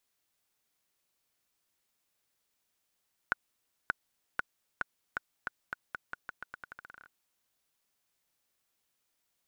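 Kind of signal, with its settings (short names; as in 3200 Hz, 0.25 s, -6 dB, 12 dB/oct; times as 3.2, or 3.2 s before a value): bouncing ball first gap 0.58 s, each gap 0.85, 1470 Hz, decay 18 ms -13 dBFS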